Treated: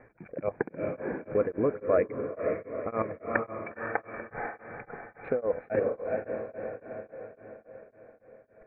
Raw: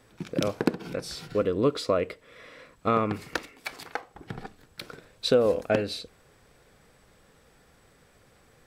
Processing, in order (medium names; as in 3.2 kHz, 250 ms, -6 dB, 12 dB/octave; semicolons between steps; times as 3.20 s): reverb removal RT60 1.6 s; level held to a coarse grid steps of 15 dB; rippled Chebyshev low-pass 2.4 kHz, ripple 6 dB; echo that smears into a reverb 484 ms, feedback 53%, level -3.5 dB; tremolo of two beating tones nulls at 3.6 Hz; trim +9 dB